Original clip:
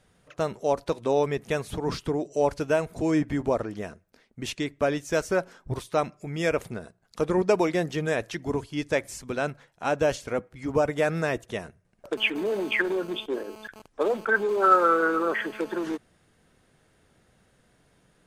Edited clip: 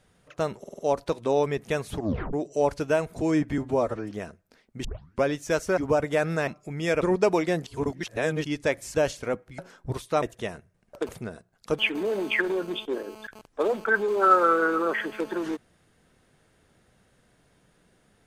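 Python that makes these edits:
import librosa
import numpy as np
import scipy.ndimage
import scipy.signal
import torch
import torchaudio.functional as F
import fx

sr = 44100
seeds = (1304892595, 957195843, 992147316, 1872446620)

y = fx.edit(x, sr, fx.stutter(start_s=0.59, slice_s=0.05, count=5),
    fx.tape_stop(start_s=1.76, length_s=0.37),
    fx.stretch_span(start_s=3.38, length_s=0.35, factor=1.5),
    fx.tape_start(start_s=4.47, length_s=0.39),
    fx.swap(start_s=5.4, length_s=0.64, other_s=10.63, other_length_s=0.7),
    fx.move(start_s=6.58, length_s=0.7, to_s=12.19),
    fx.reverse_span(start_s=7.93, length_s=0.78),
    fx.cut(start_s=9.21, length_s=0.78), tone=tone)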